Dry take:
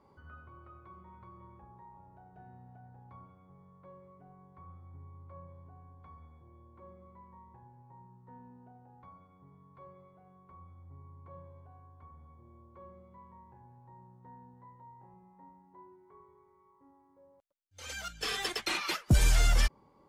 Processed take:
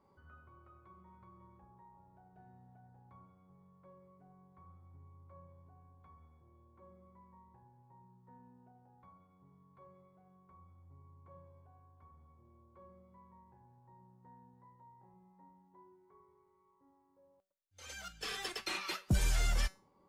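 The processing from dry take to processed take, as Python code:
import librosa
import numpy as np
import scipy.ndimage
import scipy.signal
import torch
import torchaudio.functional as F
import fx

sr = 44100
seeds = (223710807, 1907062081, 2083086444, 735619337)

y = fx.comb_fb(x, sr, f0_hz=190.0, decay_s=0.32, harmonics='all', damping=0.0, mix_pct=60)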